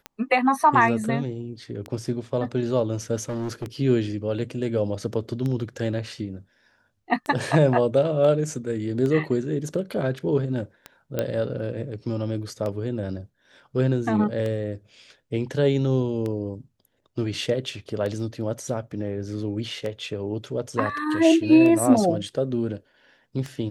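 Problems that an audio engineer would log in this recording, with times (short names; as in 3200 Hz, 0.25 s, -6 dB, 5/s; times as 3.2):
tick 33 1/3 rpm -18 dBFS
3.29–3.65 clipped -25.5 dBFS
11.19 pop -11 dBFS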